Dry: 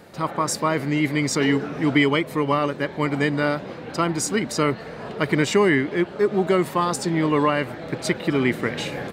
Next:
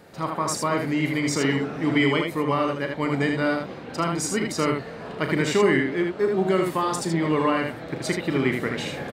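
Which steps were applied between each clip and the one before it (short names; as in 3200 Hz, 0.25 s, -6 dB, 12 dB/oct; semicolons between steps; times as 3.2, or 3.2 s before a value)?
early reflections 37 ms -9.5 dB, 78 ms -4.5 dB; gain -3.5 dB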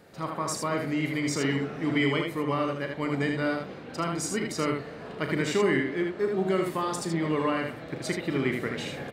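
bell 910 Hz -2.5 dB 0.45 oct; reverb RT60 1.2 s, pre-delay 57 ms, DRR 16 dB; gain -4.5 dB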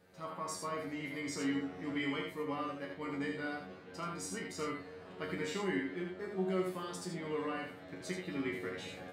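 resonator 92 Hz, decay 0.21 s, harmonics all, mix 100%; gain -2.5 dB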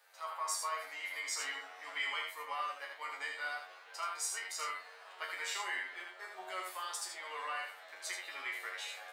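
octaver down 1 oct, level -5 dB; HPF 770 Hz 24 dB/oct; high shelf 6800 Hz +6.5 dB; gain +3.5 dB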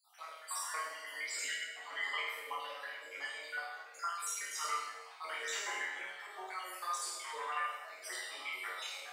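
random spectral dropouts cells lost 58%; flutter echo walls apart 8.6 m, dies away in 0.98 s; chorus voices 4, 0.23 Hz, delay 23 ms, depth 4.1 ms; gain +4.5 dB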